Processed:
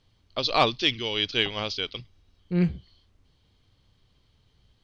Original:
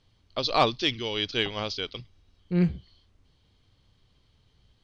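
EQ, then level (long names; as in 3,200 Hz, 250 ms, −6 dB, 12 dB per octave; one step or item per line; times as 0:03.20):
dynamic equaliser 2,700 Hz, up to +4 dB, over −41 dBFS, Q 1.3
0.0 dB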